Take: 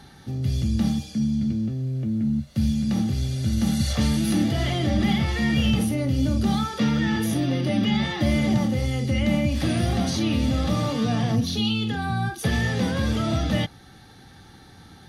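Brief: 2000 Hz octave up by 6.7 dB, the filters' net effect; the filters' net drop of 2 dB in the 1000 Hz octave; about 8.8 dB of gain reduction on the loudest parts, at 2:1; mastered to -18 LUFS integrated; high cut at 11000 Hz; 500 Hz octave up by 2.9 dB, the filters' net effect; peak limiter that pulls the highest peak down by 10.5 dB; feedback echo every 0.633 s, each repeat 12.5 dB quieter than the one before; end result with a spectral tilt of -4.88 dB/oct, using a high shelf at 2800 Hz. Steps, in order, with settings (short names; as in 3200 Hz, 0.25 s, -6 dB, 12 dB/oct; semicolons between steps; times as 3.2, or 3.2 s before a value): LPF 11000 Hz; bell 500 Hz +5.5 dB; bell 1000 Hz -8.5 dB; bell 2000 Hz +7 dB; high shelf 2800 Hz +7 dB; compressor 2:1, threshold -33 dBFS; limiter -27.5 dBFS; feedback echo 0.633 s, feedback 24%, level -12.5 dB; gain +17.5 dB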